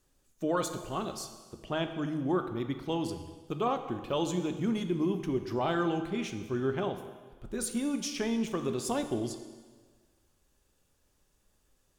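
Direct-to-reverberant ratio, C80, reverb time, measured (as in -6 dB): 8.0 dB, 10.5 dB, 1.5 s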